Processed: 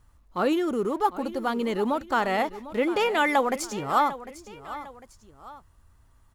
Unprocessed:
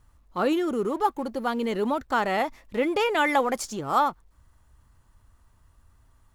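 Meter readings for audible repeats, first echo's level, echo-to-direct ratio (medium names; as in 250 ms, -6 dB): 2, -15.0 dB, -14.5 dB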